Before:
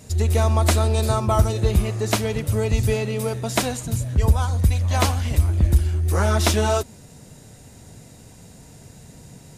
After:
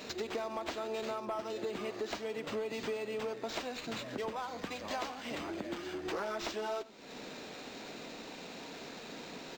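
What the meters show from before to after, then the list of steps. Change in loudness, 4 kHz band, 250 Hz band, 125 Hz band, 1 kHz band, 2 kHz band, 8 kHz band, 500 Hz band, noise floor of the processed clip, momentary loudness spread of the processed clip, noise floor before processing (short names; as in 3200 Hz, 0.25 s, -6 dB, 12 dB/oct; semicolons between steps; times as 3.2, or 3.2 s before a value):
-19.0 dB, -12.0 dB, -14.5 dB, -36.0 dB, -13.0 dB, -11.5 dB, -20.5 dB, -12.0 dB, -48 dBFS, 8 LU, -46 dBFS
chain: HPF 260 Hz 24 dB/oct; compressor 5:1, threshold -40 dBFS, peak gain reduction 21.5 dB; soft clip -32 dBFS, distortion -19 dB; echo 95 ms -20 dB; decimation joined by straight lines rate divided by 4×; gain +4.5 dB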